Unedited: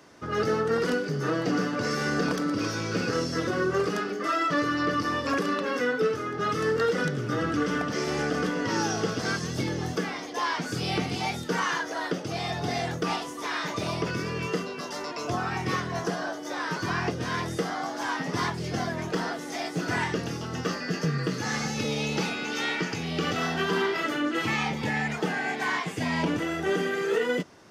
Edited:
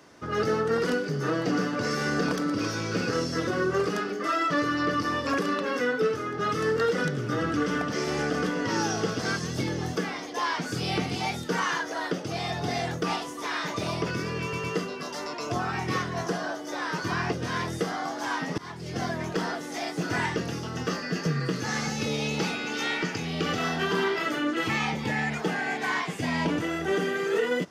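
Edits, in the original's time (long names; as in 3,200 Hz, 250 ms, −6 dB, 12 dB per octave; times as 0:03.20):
0:14.42: stutter 0.11 s, 3 plays
0:18.36–0:18.84: fade in, from −22.5 dB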